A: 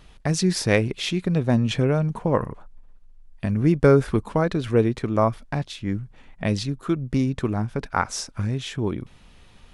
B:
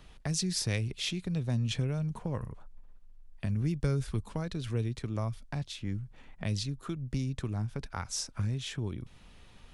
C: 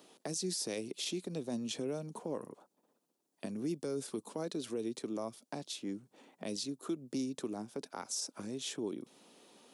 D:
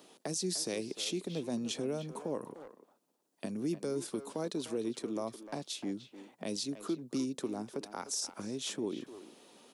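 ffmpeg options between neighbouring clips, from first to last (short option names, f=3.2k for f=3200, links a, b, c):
-filter_complex "[0:a]acrossover=split=140|3000[a][b][c];[b]acompressor=threshold=-37dB:ratio=3[d];[a][d][c]amix=inputs=3:normalize=0,volume=-4dB"
-af "highpass=f=280:w=0.5412,highpass=f=280:w=1.3066,equalizer=f=1.9k:w=0.57:g=-14.5,alimiter=level_in=11dB:limit=-24dB:level=0:latency=1:release=43,volume=-11dB,volume=7dB"
-filter_complex "[0:a]asplit=2[a][b];[b]adelay=300,highpass=300,lowpass=3.4k,asoftclip=type=hard:threshold=-36.5dB,volume=-10dB[c];[a][c]amix=inputs=2:normalize=0,volume=2dB"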